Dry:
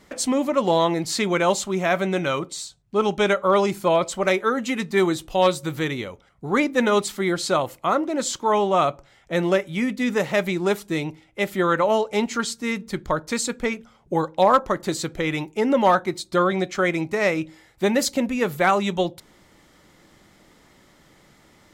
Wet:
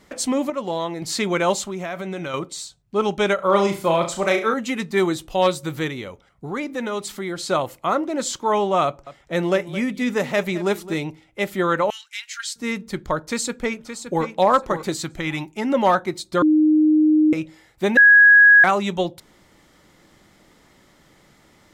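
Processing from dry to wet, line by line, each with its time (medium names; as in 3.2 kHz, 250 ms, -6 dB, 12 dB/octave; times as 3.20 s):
0.50–1.02 s: gain -6.5 dB
1.61–2.34 s: compression, threshold -25 dBFS
3.35–4.54 s: flutter echo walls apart 6.1 m, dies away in 0.35 s
5.88–7.50 s: compression 2:1, threshold -28 dBFS
8.85–10.98 s: delay 215 ms -15.5 dB
11.90–12.56 s: elliptic high-pass 1.6 kHz, stop band 60 dB
13.21–14.33 s: echo throw 570 ms, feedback 20%, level -9 dB
14.96–15.74 s: peaking EQ 470 Hz -13 dB 0.34 oct
16.42–17.33 s: bleep 308 Hz -12 dBFS
17.97–18.64 s: bleep 1.66 kHz -7 dBFS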